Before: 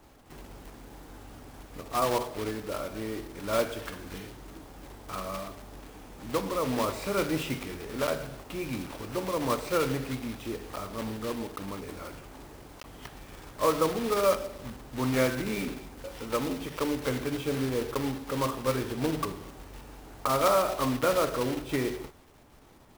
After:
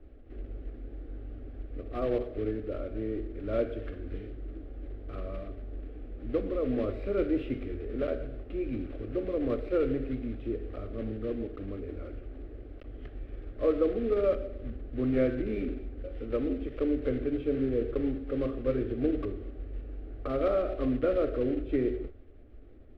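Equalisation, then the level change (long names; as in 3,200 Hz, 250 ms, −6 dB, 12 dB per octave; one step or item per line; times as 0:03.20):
high-frequency loss of the air 460 metres
spectral tilt −2.5 dB per octave
phaser with its sweep stopped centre 390 Hz, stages 4
0.0 dB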